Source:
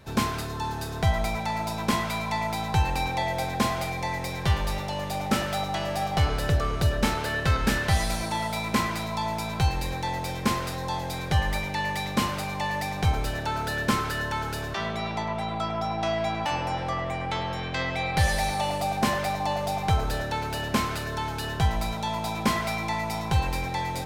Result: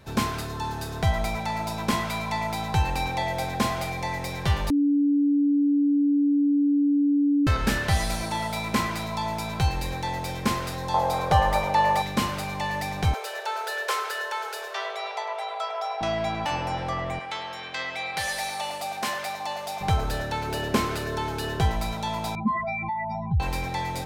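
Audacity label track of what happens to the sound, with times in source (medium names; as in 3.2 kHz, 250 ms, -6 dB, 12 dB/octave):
4.700000	7.470000	bleep 287 Hz -18 dBFS
10.940000	12.020000	high-order bell 780 Hz +11 dB
13.140000	16.010000	steep high-pass 400 Hz 96 dB/octave
17.190000	19.810000	high-pass 980 Hz 6 dB/octave
20.470000	21.720000	peaking EQ 390 Hz +7.5 dB
22.350000	23.400000	spectral contrast enhancement exponent 2.9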